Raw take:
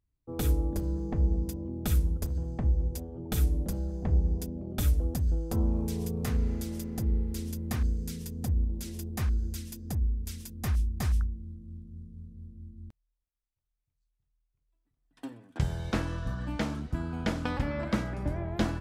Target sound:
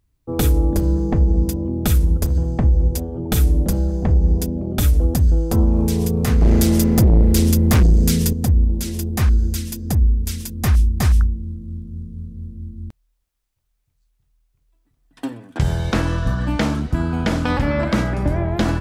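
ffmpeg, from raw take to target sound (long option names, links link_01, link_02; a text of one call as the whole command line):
ffmpeg -i in.wav -filter_complex "[0:a]asettb=1/sr,asplit=3[link_01][link_02][link_03];[link_01]atrim=end=6.414[link_04];[link_02]atrim=start=6.41:end=8.33,asetpts=PTS-STARTPTS,afade=type=in:duration=0.004:curve=qsin,afade=type=out:start_time=1.916:duration=0.004:curve=qsin,aeval=exprs='0.119*(cos(1*acos(clip(val(0)/0.119,-1,1)))-cos(1*PI/2))+0.0376*(cos(5*acos(clip(val(0)/0.119,-1,1)))-cos(5*PI/2))':channel_layout=same[link_05];[link_03]atrim=start=8.326[link_06];[link_04][link_05]acrossfade=duration=0.004:curve1=hsin:curve2=qsin[link_07];[link_07][link_06]acrossfade=duration=0.004:curve1=qsin:curve2=hsin,alimiter=level_in=20.5dB:limit=-1dB:release=50:level=0:latency=1,volume=-7dB" out.wav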